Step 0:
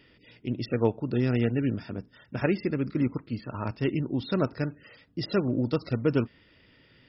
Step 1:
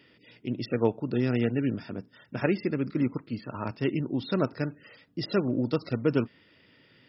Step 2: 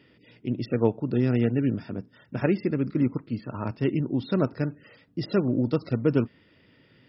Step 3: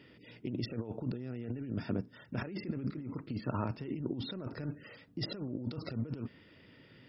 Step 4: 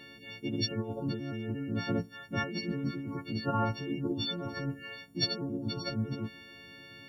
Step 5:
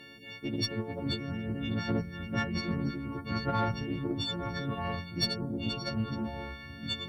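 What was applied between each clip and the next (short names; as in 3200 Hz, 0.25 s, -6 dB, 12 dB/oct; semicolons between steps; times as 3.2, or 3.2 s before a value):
HPF 120 Hz 12 dB/oct
tilt -1.5 dB/oct
negative-ratio compressor -32 dBFS, ratio -1; gain -6 dB
frequency quantiser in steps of 4 st; gain +4 dB
echoes that change speed 0.322 s, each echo -4 st, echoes 3, each echo -6 dB; added harmonics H 6 -27 dB, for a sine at -15.5 dBFS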